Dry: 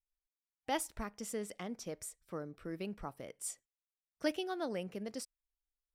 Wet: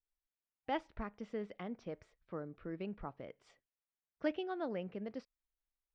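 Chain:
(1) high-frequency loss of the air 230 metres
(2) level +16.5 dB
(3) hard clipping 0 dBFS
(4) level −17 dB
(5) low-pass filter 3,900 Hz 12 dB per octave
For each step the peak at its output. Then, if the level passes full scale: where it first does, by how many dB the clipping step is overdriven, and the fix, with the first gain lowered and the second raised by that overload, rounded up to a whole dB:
−21.0, −4.5, −4.5, −21.5, −22.0 dBFS
no step passes full scale

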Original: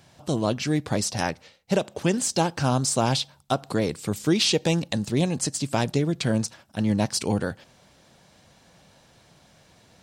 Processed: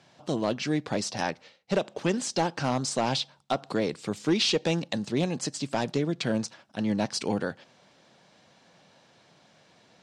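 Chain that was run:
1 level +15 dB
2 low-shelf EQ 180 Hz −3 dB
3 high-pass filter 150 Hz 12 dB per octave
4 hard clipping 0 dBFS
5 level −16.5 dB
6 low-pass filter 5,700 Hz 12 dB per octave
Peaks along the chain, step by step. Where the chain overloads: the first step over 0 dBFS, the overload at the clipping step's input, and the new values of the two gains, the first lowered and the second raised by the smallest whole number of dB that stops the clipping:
+5.0, +5.5, +7.5, 0.0, −16.5, −15.5 dBFS
step 1, 7.5 dB
step 1 +7 dB, step 5 −8.5 dB

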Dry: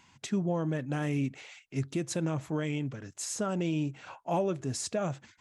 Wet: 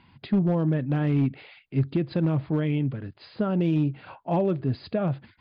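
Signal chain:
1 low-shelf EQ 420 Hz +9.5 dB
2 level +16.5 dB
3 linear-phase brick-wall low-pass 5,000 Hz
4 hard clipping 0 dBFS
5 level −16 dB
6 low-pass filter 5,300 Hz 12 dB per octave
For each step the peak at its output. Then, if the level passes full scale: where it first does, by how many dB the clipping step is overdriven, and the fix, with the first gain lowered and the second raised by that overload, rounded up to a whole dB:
−13.5, +3.0, +3.0, 0.0, −16.0, −16.0 dBFS
step 2, 3.0 dB
step 2 +13.5 dB, step 5 −13 dB

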